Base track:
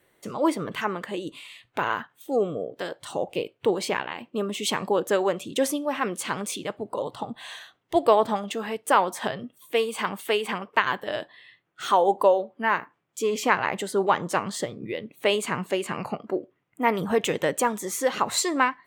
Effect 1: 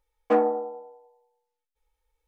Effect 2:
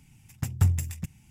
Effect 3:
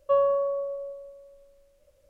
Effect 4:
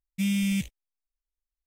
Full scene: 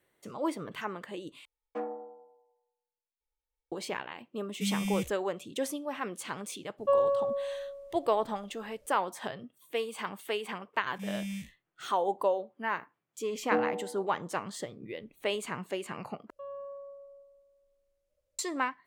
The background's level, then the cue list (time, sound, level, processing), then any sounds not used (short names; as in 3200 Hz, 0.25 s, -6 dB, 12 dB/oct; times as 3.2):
base track -9 dB
1.45 replace with 1 -15.5 dB
4.42 add 4 -6 dB
6.78 add 3 -3 dB
10.81 add 4 -11 dB + time blur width 82 ms
13.21 add 1 -11.5 dB + low shelf 320 Hz +11 dB
16.3 replace with 3 -17 dB + limiter -20 dBFS
not used: 2